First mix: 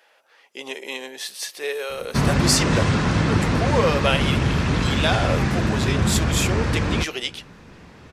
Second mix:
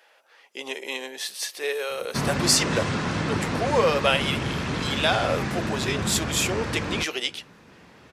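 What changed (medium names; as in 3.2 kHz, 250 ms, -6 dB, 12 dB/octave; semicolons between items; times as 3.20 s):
background -4.0 dB; master: add high-pass 180 Hz 6 dB/octave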